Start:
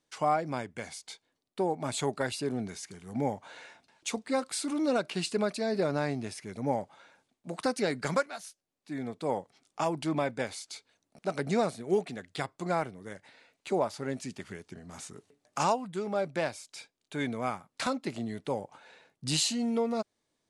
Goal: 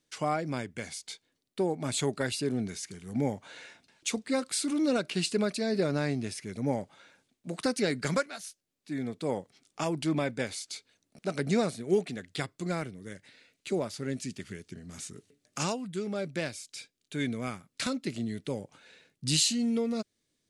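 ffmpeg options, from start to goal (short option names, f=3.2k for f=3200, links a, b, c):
-af "asetnsamples=n=441:p=0,asendcmd='12.45 equalizer g -15',equalizer=f=860:t=o:w=1.3:g=-9,volume=3.5dB"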